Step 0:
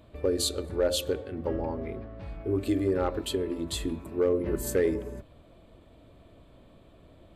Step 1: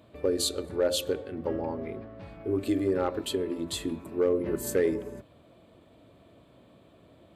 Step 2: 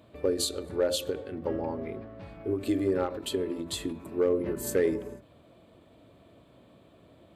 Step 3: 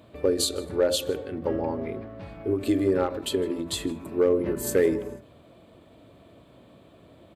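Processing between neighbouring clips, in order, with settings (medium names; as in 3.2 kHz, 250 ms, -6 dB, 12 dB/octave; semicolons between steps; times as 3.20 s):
high-pass 110 Hz 12 dB/octave
endings held to a fixed fall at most 150 dB/s
delay 156 ms -23.5 dB; trim +4 dB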